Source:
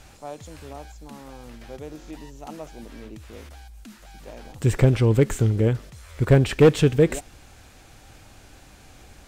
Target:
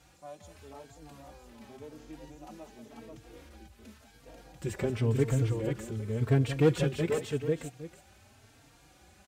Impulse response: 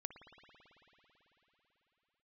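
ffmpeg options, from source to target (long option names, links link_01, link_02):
-filter_complex "[0:a]highpass=65,asplit=2[link_01][link_02];[link_02]aecho=0:1:180|490|810:0.251|0.631|0.15[link_03];[link_01][link_03]amix=inputs=2:normalize=0,asplit=2[link_04][link_05];[link_05]adelay=3.8,afreqshift=0.91[link_06];[link_04][link_06]amix=inputs=2:normalize=1,volume=-7.5dB"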